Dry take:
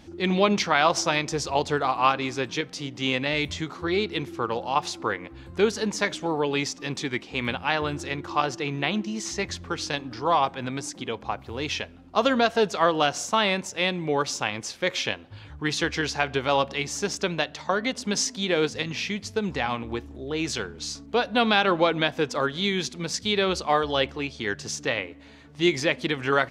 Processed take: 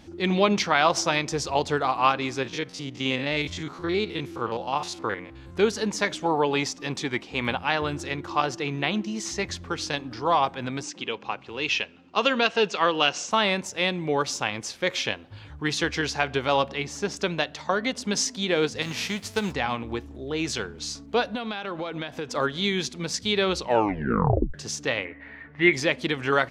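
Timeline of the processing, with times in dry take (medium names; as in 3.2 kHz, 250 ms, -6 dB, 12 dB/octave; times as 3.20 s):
2.43–5.56 s: spectrogram pixelated in time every 50 ms
6.20–7.59 s: dynamic bell 850 Hz, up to +6 dB, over -40 dBFS, Q 1.3
10.83–13.31 s: cabinet simulation 180–7200 Hz, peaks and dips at 260 Hz -4 dB, 670 Hz -6 dB, 2.7 kHz +9 dB
16.70–17.17 s: treble shelf 4.6 kHz -9 dB
18.81–19.51 s: formants flattened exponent 0.6
21.35–22.35 s: compression, threshold -28 dBFS
23.54 s: tape stop 1.00 s
25.05–25.73 s: resonant low-pass 1.9 kHz, resonance Q 5.4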